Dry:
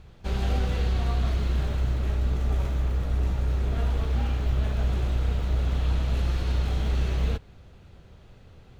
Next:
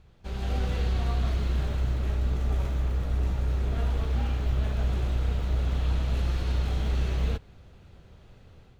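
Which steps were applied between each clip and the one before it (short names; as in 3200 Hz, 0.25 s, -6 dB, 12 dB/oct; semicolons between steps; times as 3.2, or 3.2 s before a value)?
AGC gain up to 6 dB; gain -7.5 dB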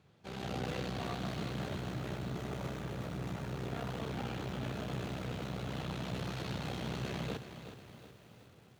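tube stage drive 26 dB, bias 0.75; HPF 110 Hz 24 dB/oct; lo-fi delay 0.369 s, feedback 55%, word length 10-bit, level -10 dB; gain +1 dB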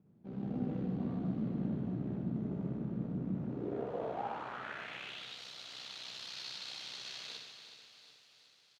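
on a send: reverse bouncing-ball echo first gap 60 ms, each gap 1.5×, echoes 5; on the sum: band-pass sweep 220 Hz -> 4600 Hz, 3.38–5.43; gain +6.5 dB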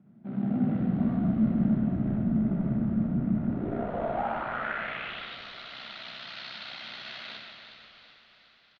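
speaker cabinet 110–3800 Hz, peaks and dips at 130 Hz +3 dB, 220 Hz +10 dB, 460 Hz -8 dB, 660 Hz +8 dB, 1400 Hz +8 dB, 2000 Hz +6 dB; on a send: frequency-shifting echo 0.176 s, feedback 65%, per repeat -44 Hz, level -12.5 dB; on the sum: gain +5 dB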